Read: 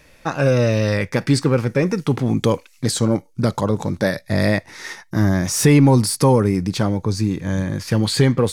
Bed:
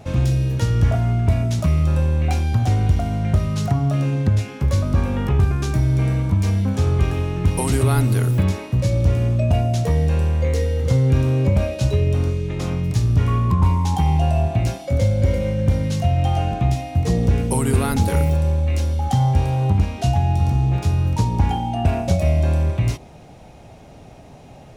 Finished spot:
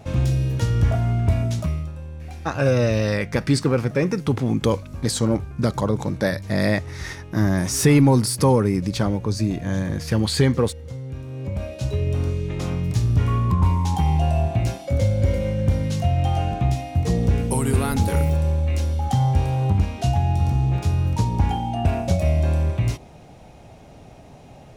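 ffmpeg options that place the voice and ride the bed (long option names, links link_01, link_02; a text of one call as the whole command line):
ffmpeg -i stem1.wav -i stem2.wav -filter_complex "[0:a]adelay=2200,volume=-2.5dB[link_01];[1:a]volume=12.5dB,afade=type=out:start_time=1.47:duration=0.45:silence=0.188365,afade=type=in:start_time=11.27:duration=1.13:silence=0.188365[link_02];[link_01][link_02]amix=inputs=2:normalize=0" out.wav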